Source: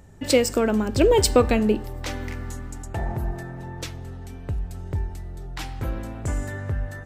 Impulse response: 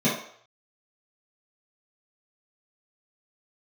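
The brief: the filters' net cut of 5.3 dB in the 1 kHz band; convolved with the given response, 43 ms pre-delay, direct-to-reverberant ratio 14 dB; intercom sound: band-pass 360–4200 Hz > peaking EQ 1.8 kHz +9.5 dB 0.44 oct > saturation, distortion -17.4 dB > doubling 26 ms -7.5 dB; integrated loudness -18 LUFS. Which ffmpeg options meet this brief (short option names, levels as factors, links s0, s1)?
-filter_complex "[0:a]equalizer=f=1000:t=o:g=-8,asplit=2[s0][s1];[1:a]atrim=start_sample=2205,adelay=43[s2];[s1][s2]afir=irnorm=-1:irlink=0,volume=0.0376[s3];[s0][s3]amix=inputs=2:normalize=0,highpass=360,lowpass=4200,equalizer=f=1800:t=o:w=0.44:g=9.5,asoftclip=threshold=0.211,asplit=2[s4][s5];[s5]adelay=26,volume=0.422[s6];[s4][s6]amix=inputs=2:normalize=0,volume=3.16"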